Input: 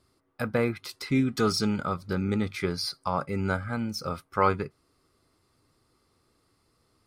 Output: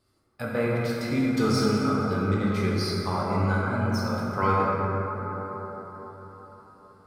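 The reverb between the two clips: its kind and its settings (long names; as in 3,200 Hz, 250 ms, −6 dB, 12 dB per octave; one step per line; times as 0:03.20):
dense smooth reverb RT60 4.9 s, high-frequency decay 0.3×, DRR −6 dB
level −4.5 dB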